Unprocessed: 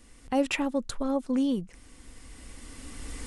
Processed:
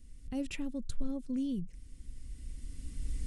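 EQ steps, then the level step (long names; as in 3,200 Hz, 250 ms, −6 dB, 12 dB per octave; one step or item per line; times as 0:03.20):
guitar amp tone stack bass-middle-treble 10-0-1
parametric band 150 Hz +6.5 dB 0.33 octaves
+10.5 dB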